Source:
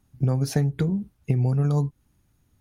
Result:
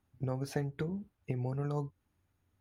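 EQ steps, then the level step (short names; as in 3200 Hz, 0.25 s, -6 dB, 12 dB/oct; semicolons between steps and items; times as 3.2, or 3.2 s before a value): tone controls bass -10 dB, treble -12 dB; bell 90 Hz +12 dB 0.24 oct; high shelf 7400 Hz +5 dB; -6.0 dB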